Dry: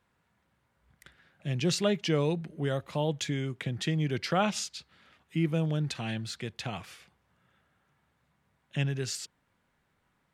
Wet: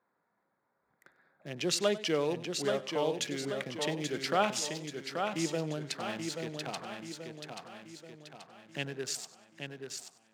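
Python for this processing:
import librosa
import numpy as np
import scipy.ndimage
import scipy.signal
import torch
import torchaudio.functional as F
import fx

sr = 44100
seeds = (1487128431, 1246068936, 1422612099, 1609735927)

y = fx.wiener(x, sr, points=15)
y = scipy.signal.sosfilt(scipy.signal.butter(2, 320.0, 'highpass', fs=sr, output='sos'), y)
y = fx.high_shelf(y, sr, hz=9800.0, db=6.5)
y = fx.echo_feedback(y, sr, ms=832, feedback_pct=49, wet_db=-5.5)
y = fx.echo_warbled(y, sr, ms=96, feedback_pct=34, rate_hz=2.8, cents=68, wet_db=-17.0)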